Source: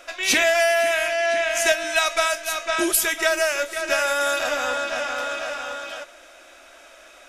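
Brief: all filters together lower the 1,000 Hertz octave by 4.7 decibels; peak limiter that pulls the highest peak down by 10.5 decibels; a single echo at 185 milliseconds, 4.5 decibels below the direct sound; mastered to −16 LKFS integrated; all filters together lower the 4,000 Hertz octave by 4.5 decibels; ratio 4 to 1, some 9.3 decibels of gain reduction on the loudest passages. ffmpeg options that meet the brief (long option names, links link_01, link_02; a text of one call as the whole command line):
ffmpeg -i in.wav -af "equalizer=frequency=1000:width_type=o:gain=-8,equalizer=frequency=4000:width_type=o:gain=-5.5,acompressor=threshold=-28dB:ratio=4,alimiter=level_in=1dB:limit=-24dB:level=0:latency=1,volume=-1dB,aecho=1:1:185:0.596,volume=17dB" out.wav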